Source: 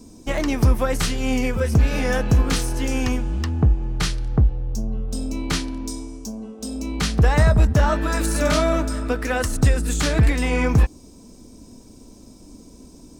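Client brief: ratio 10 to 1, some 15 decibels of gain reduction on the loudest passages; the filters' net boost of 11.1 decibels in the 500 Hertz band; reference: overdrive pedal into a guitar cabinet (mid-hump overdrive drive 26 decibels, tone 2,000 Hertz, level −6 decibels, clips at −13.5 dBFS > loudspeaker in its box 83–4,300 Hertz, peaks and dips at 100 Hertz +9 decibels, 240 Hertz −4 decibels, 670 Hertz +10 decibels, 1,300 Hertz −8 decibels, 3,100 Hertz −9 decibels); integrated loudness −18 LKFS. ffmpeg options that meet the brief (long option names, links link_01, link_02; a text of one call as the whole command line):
ffmpeg -i in.wav -filter_complex "[0:a]equalizer=frequency=500:width_type=o:gain=8,acompressor=threshold=-26dB:ratio=10,asplit=2[link_01][link_02];[link_02]highpass=frequency=720:poles=1,volume=26dB,asoftclip=type=tanh:threshold=-13.5dB[link_03];[link_01][link_03]amix=inputs=2:normalize=0,lowpass=frequency=2000:poles=1,volume=-6dB,highpass=83,equalizer=frequency=100:width_type=q:width=4:gain=9,equalizer=frequency=240:width_type=q:width=4:gain=-4,equalizer=frequency=670:width_type=q:width=4:gain=10,equalizer=frequency=1300:width_type=q:width=4:gain=-8,equalizer=frequency=3100:width_type=q:width=4:gain=-9,lowpass=frequency=4300:width=0.5412,lowpass=frequency=4300:width=1.3066,volume=4.5dB" out.wav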